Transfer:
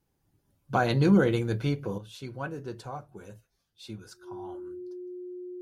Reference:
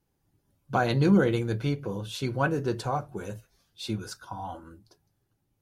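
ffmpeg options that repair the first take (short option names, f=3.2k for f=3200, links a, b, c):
-af "bandreject=f=360:w=30,asetnsamples=n=441:p=0,asendcmd='1.98 volume volume 9.5dB',volume=0dB"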